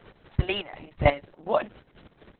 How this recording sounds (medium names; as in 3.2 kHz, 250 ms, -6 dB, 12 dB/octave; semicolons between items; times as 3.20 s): a quantiser's noise floor 10-bit, dither none; chopped level 4.1 Hz, depth 65%, duty 50%; Opus